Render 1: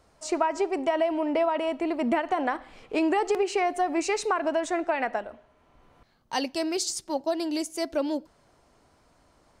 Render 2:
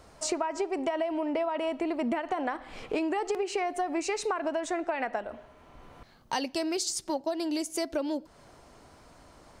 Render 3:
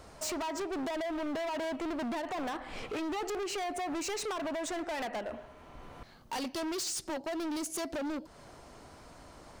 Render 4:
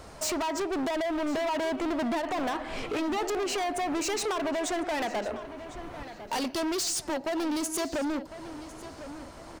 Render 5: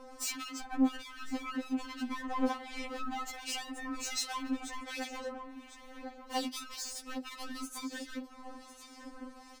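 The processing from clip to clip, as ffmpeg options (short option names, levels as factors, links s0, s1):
-af "acompressor=threshold=0.0141:ratio=4,volume=2.37"
-af "volume=59.6,asoftclip=hard,volume=0.0168,volume=1.26"
-filter_complex "[0:a]asplit=2[s0][s1];[s1]adelay=1052,lowpass=f=3800:p=1,volume=0.224,asplit=2[s2][s3];[s3]adelay=1052,lowpass=f=3800:p=1,volume=0.39,asplit=2[s4][s5];[s5]adelay=1052,lowpass=f=3800:p=1,volume=0.39,asplit=2[s6][s7];[s7]adelay=1052,lowpass=f=3800:p=1,volume=0.39[s8];[s0][s2][s4][s6][s8]amix=inputs=5:normalize=0,volume=1.88"
-filter_complex "[0:a]acrossover=split=1700[s0][s1];[s0]aeval=exprs='val(0)*(1-0.7/2+0.7/2*cos(2*PI*1.3*n/s))':c=same[s2];[s1]aeval=exprs='val(0)*(1-0.7/2-0.7/2*cos(2*PI*1.3*n/s))':c=same[s3];[s2][s3]amix=inputs=2:normalize=0,afftfilt=real='re*3.46*eq(mod(b,12),0)':imag='im*3.46*eq(mod(b,12),0)':win_size=2048:overlap=0.75"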